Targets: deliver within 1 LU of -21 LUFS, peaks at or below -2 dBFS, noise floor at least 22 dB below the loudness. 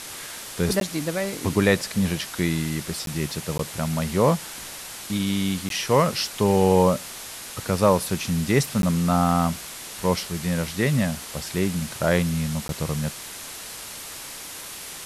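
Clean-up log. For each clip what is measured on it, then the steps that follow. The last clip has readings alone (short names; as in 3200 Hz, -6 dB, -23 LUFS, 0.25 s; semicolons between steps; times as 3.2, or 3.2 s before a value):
dropouts 6; longest dropout 12 ms; noise floor -38 dBFS; noise floor target -47 dBFS; loudness -24.5 LUFS; peak -5.5 dBFS; loudness target -21.0 LUFS
-> interpolate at 0.8/3.06/3.58/5.69/8.82/12.68, 12 ms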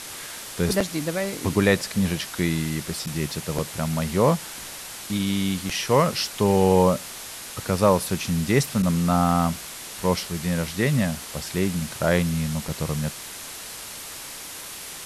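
dropouts 0; noise floor -38 dBFS; noise floor target -47 dBFS
-> noise print and reduce 9 dB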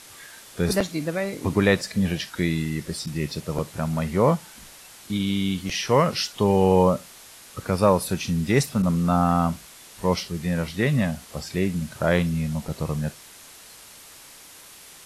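noise floor -47 dBFS; loudness -24.0 LUFS; peak -6.0 dBFS; loudness target -21.0 LUFS
-> gain +3 dB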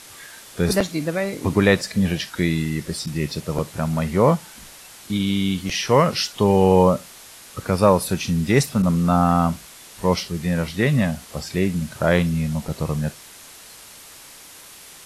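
loudness -21.0 LUFS; peak -3.0 dBFS; noise floor -44 dBFS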